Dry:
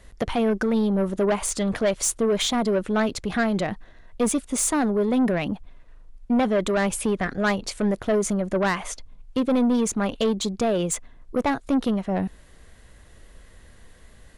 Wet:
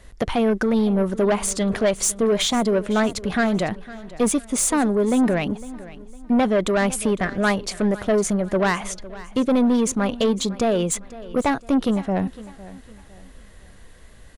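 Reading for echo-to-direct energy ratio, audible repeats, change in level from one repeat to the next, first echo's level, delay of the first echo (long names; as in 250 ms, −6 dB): −17.5 dB, 2, −9.0 dB, −18.0 dB, 506 ms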